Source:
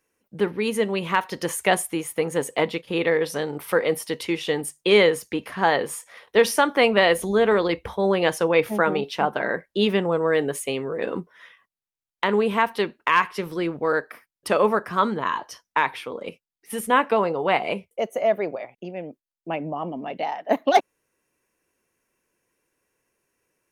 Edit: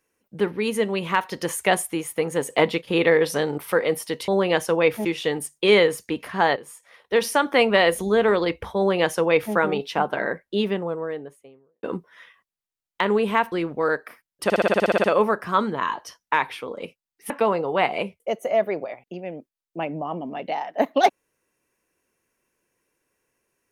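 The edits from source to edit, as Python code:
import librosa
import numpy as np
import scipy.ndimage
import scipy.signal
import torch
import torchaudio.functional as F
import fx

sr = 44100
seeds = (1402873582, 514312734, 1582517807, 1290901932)

y = fx.studio_fade_out(x, sr, start_s=9.32, length_s=1.74)
y = fx.edit(y, sr, fx.clip_gain(start_s=2.5, length_s=1.08, db=3.5),
    fx.fade_in_from(start_s=5.79, length_s=0.97, floor_db=-14.0),
    fx.duplicate(start_s=8.0, length_s=0.77, to_s=4.28),
    fx.cut(start_s=12.75, length_s=0.81),
    fx.stutter(start_s=14.48, slice_s=0.06, count=11),
    fx.cut(start_s=16.74, length_s=0.27), tone=tone)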